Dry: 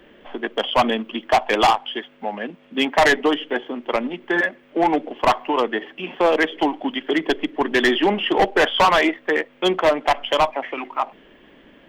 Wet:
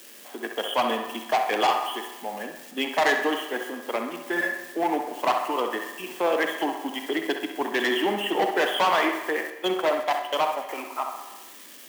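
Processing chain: zero-crossing glitches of -27.5 dBFS; high-pass 210 Hz 12 dB/octave; band-passed feedback delay 65 ms, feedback 61%, band-pass 1.1 kHz, level -5.5 dB; 9.50–10.69 s: gate -22 dBFS, range -16 dB; Schroeder reverb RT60 1.3 s, combs from 31 ms, DRR 9 dB; trim -7 dB

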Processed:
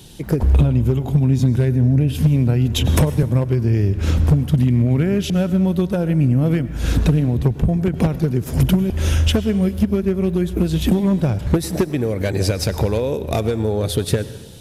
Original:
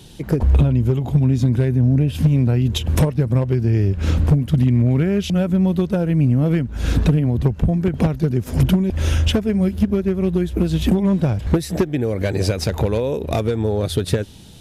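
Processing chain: treble shelf 8.3 kHz +7 dB; reverberation RT60 1.1 s, pre-delay 88 ms, DRR 14.5 dB; 2.78–3.23 s: three bands compressed up and down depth 70%

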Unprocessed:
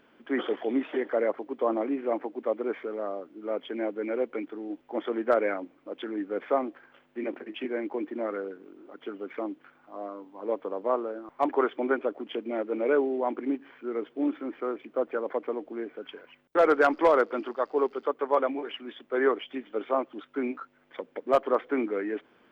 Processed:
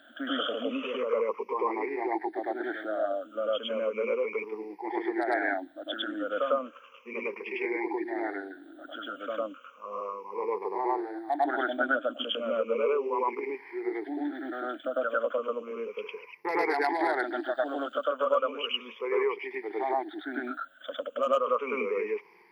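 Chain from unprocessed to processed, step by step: drifting ripple filter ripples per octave 0.82, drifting -0.34 Hz, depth 24 dB; compression 3:1, threshold -21 dBFS, peak gain reduction 10 dB; high-pass 780 Hz 6 dB/octave; on a send: reverse echo 102 ms -3 dB

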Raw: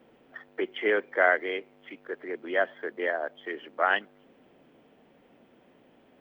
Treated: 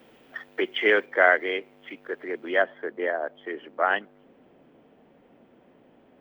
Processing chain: treble shelf 2.3 kHz +10 dB, from 1.06 s +3 dB, from 2.62 s -8.5 dB; trim +3 dB

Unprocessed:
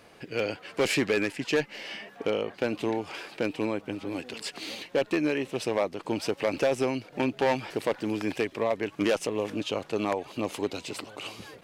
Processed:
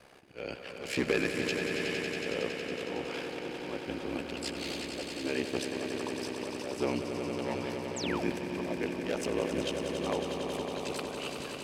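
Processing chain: slow attack 269 ms; ring modulator 33 Hz; on a send: echo with a slow build-up 92 ms, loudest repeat 5, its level -8.5 dB; on the sum: painted sound fall, 7.96–8.24 s, 480–8500 Hz -39 dBFS

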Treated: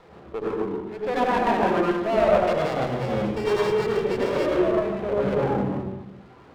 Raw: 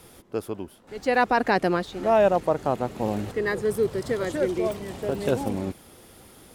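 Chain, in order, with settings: 2.43–4.46 s: sorted samples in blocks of 16 samples; reverb removal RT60 1.5 s; saturation -25.5 dBFS, distortion -7 dB; cabinet simulation 110–2700 Hz, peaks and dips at 110 Hz -4 dB, 260 Hz -6 dB, 950 Hz +6 dB; reverberation RT60 1.1 s, pre-delay 74 ms, DRR -3.5 dB; sliding maximum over 9 samples

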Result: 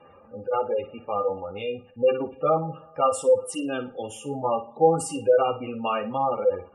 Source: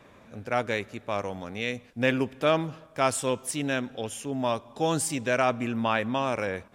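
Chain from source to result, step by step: chorus voices 2, 0.56 Hz, delay 12 ms, depth 2 ms; dynamic bell 1.9 kHz, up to -7 dB, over -48 dBFS, Q 2.1; small resonant body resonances 510/820/1200/2800 Hz, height 15 dB, ringing for 60 ms; spectral gate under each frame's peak -20 dB strong; on a send: flutter echo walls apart 9.6 m, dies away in 0.28 s

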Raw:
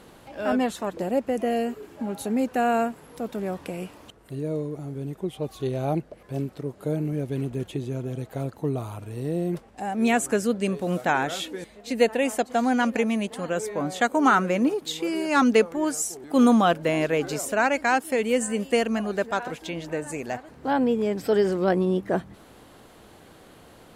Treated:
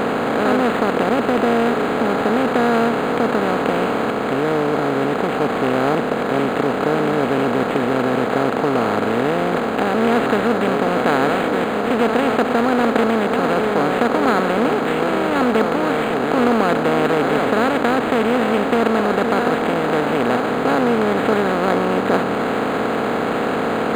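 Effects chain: spectral levelling over time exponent 0.2; decimation joined by straight lines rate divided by 8×; trim -4 dB

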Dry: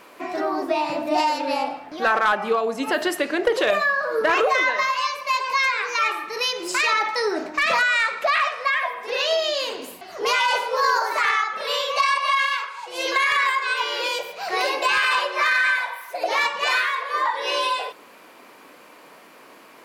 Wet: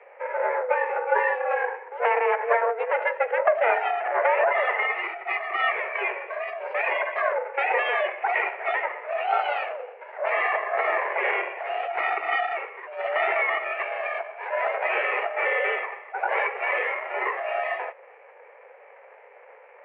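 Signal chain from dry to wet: comb filter that takes the minimum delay 0.39 ms; mistuned SSB +240 Hz 170–2200 Hz; formant shift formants -2 st; trim +1.5 dB

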